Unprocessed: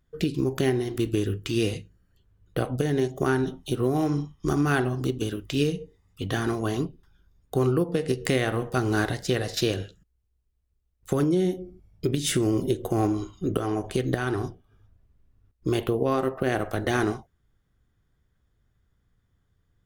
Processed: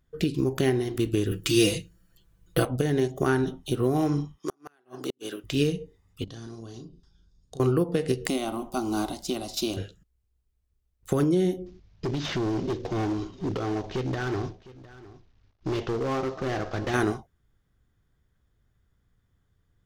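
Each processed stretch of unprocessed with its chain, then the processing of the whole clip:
0:01.31–0:02.65: high-shelf EQ 3,800 Hz +10 dB + comb filter 6 ms, depth 88%
0:04.38–0:05.44: high-pass filter 370 Hz + gate with flip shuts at −19 dBFS, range −40 dB
0:06.24–0:07.60: drawn EQ curve 190 Hz 0 dB, 2,200 Hz −10 dB, 5,000 Hz +8 dB, 8,600 Hz −2 dB, 14,000 Hz −22 dB + downward compressor 8 to 1, threshold −40 dBFS + double-tracking delay 35 ms −6 dB
0:08.27–0:09.77: parametric band 15,000 Hz +2.5 dB 0.44 octaves + phaser with its sweep stopped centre 470 Hz, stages 6
0:11.66–0:16.94: variable-slope delta modulation 32 kbit/s + hard clipping −24.5 dBFS + single-tap delay 707 ms −19 dB
whole clip: no processing

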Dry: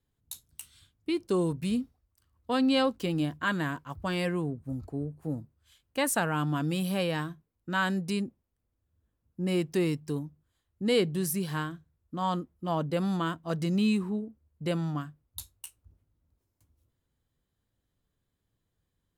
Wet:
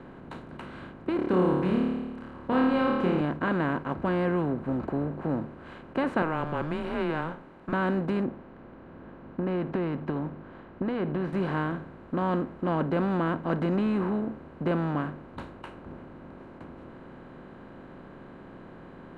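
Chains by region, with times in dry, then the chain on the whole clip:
0:01.16–0:03.21: notch filter 660 Hz, Q 7.7 + flutter between parallel walls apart 4.7 metres, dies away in 0.55 s
0:04.97–0:05.41: low-pass filter 8,500 Hz + one half of a high-frequency compander decoder only
0:06.22–0:07.73: high-pass filter 670 Hz 6 dB per octave + frequency shifter −160 Hz
0:08.25–0:11.33: downward compressor 4 to 1, threshold −33 dBFS + high-frequency loss of the air 260 metres
whole clip: compressor on every frequency bin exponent 0.4; low-pass filter 1,500 Hz 12 dB per octave; level −3 dB

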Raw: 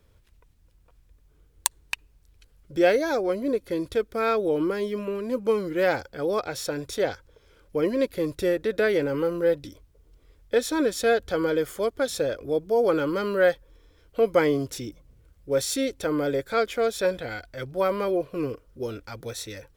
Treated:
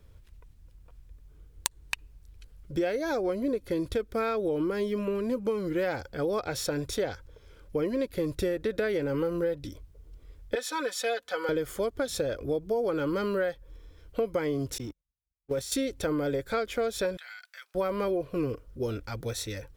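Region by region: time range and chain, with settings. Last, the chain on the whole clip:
0:10.55–0:11.49: high-pass filter 950 Hz + spectral tilt −1.5 dB per octave + comb filter 4 ms, depth 72%
0:14.78–0:15.72: mu-law and A-law mismatch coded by mu + noise gate −36 dBFS, range −44 dB + output level in coarse steps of 13 dB
0:17.17–0:17.75: high-pass filter 1,300 Hz 24 dB per octave + downward compressor, threshold −41 dBFS
whole clip: low-shelf EQ 150 Hz +8 dB; downward compressor 10 to 1, threshold −25 dBFS

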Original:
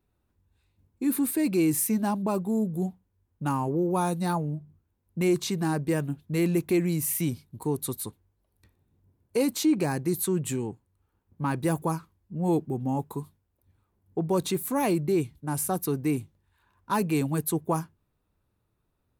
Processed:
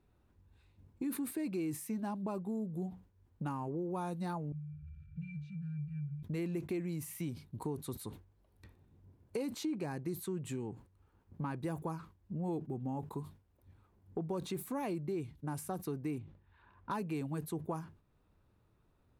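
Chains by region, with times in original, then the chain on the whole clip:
0:04.52–0:06.23: converter with a step at zero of −38 dBFS + linear-phase brick-wall band-stop 210–1,300 Hz + resonances in every octave D, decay 0.26 s
0:16.18–0:16.91: low-pass filter 3,300 Hz + level that may fall only so fast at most 150 dB per second
whole clip: downward compressor 3 to 1, threshold −45 dBFS; low-pass filter 3,600 Hz 6 dB per octave; level that may fall only so fast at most 140 dB per second; level +4 dB

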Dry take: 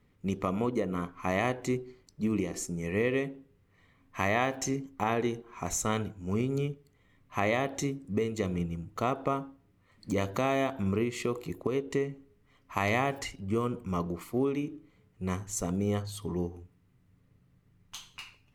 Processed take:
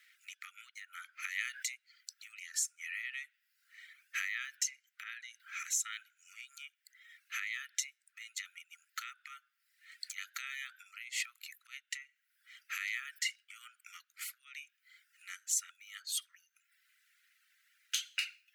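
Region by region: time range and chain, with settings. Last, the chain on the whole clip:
0:01.29–0:01.75: parametric band 560 Hz −9 dB 1.8 octaves + level that may fall only so fast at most 75 dB per second
0:04.96–0:05.40: high-shelf EQ 12,000 Hz −7 dB + downward compressor 2 to 1, threshold −53 dBFS
whole clip: reverb reduction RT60 0.65 s; downward compressor 8 to 1, threshold −43 dBFS; Butterworth high-pass 1,400 Hz 96 dB per octave; level +13.5 dB

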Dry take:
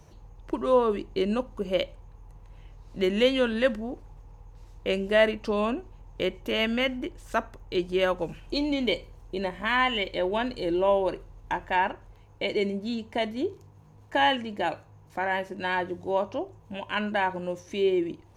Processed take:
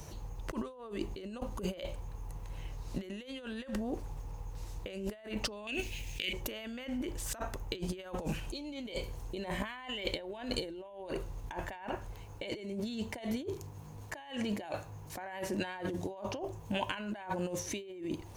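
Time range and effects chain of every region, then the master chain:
0:05.67–0:06.33: high shelf with overshoot 1,700 Hz +13.5 dB, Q 3 + downward compressor 8 to 1, threshold −25 dBFS
whole clip: dynamic equaliser 710 Hz, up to +4 dB, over −35 dBFS, Q 2.2; compressor whose output falls as the input rises −37 dBFS, ratio −1; high-shelf EQ 5,300 Hz +11 dB; level −3.5 dB

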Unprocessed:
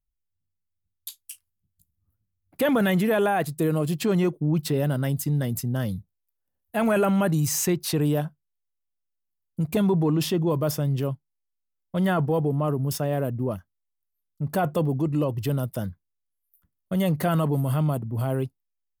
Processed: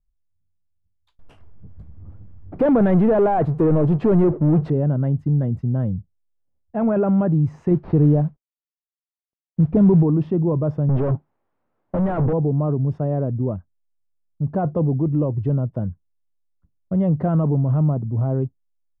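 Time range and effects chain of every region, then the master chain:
0:01.19–0:04.70: bass and treble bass −6 dB, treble +2 dB + power curve on the samples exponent 0.5
0:07.71–0:10.03: variable-slope delta modulation 32 kbit/s + low-shelf EQ 420 Hz +5 dB + noise that follows the level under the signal 20 dB
0:10.89–0:12.33: downward compressor 3 to 1, threshold −29 dBFS + mid-hump overdrive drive 40 dB, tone 2,300 Hz, clips at −16.5 dBFS
whole clip: low-pass filter 1,000 Hz 12 dB per octave; spectral tilt −2 dB per octave

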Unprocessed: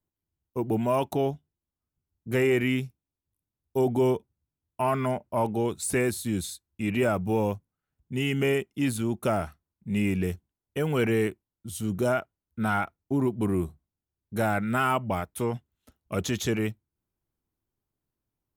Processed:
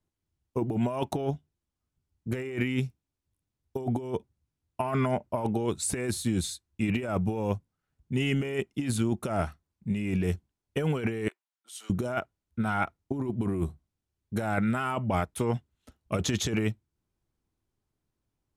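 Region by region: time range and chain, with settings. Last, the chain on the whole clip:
0:11.28–0:11.90: Bessel high-pass filter 1,200 Hz, order 4 + spectral tilt −2 dB per octave
whole clip: low-pass filter 9,400 Hz 12 dB per octave; low-shelf EQ 120 Hz +2.5 dB; compressor whose output falls as the input rises −27 dBFS, ratio −0.5

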